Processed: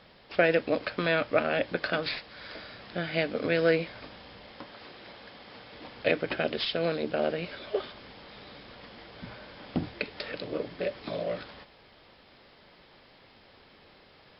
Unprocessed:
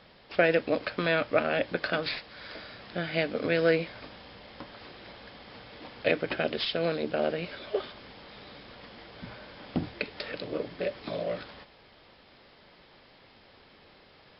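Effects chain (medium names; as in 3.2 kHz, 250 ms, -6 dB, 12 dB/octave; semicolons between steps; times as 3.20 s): 4.52–5.73 s: bass shelf 100 Hz -9.5 dB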